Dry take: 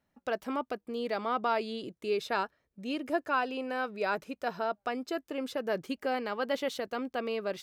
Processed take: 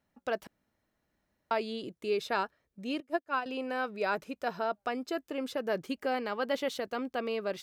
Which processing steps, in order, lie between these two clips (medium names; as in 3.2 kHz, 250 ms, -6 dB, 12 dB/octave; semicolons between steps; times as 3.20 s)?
0.47–1.51 s: room tone; 3.00–3.46 s: upward expansion 2.5:1, over -43 dBFS